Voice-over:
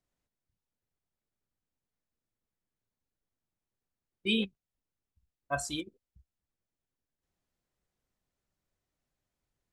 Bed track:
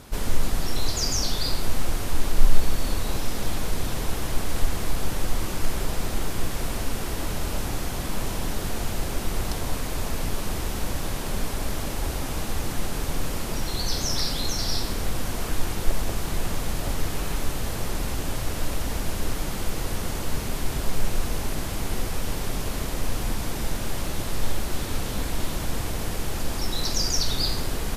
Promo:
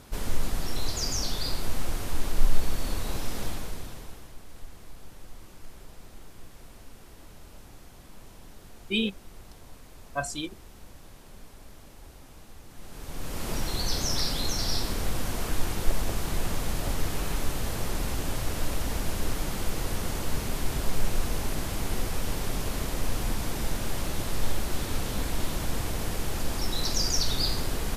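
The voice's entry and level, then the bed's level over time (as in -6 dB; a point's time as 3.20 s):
4.65 s, +2.0 dB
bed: 3.43 s -4.5 dB
4.36 s -20.5 dB
12.68 s -20.5 dB
13.49 s -2 dB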